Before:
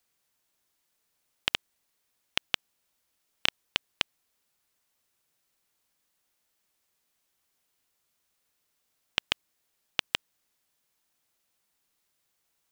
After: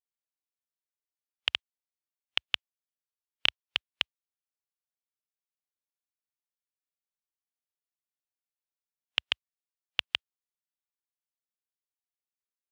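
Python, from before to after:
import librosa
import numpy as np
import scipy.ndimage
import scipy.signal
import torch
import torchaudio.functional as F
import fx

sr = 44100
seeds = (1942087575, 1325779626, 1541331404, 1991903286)

y = scipy.signal.sosfilt(scipy.signal.butter(4, 62.0, 'highpass', fs=sr, output='sos'), x)
y = fx.peak_eq(y, sr, hz=180.0, db=-4.5, octaves=1.7)
y = fx.spectral_expand(y, sr, expansion=1.5)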